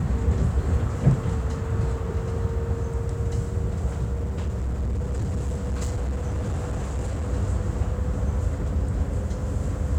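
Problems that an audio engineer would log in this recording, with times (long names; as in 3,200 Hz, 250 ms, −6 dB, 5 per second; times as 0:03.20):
0:04.13–0:07.31: clipping −23 dBFS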